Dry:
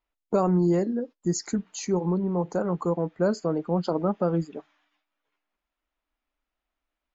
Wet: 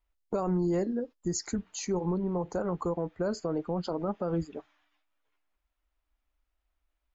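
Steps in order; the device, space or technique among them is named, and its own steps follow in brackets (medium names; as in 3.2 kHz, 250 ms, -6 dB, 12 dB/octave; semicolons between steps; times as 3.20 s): car stereo with a boomy subwoofer (resonant low shelf 110 Hz +10.5 dB, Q 1.5; peak limiter -19 dBFS, peak gain reduction 6.5 dB); trim -2 dB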